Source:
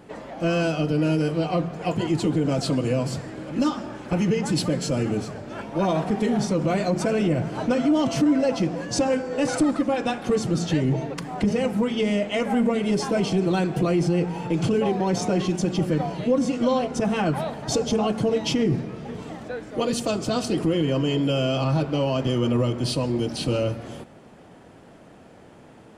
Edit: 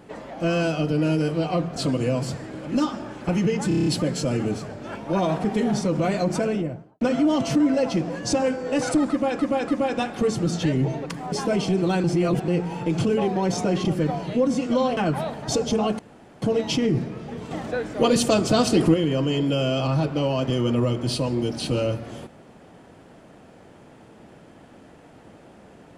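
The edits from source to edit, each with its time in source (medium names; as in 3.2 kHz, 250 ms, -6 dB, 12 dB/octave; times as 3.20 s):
1.76–2.60 s: delete
4.52 s: stutter 0.03 s, 7 plays
6.98–7.67 s: studio fade out
9.76–10.05 s: loop, 3 plays
11.40–12.96 s: delete
13.68–14.12 s: reverse
15.49–15.76 s: delete
16.88–17.17 s: delete
18.19 s: insert room tone 0.43 s
19.28–20.71 s: gain +5.5 dB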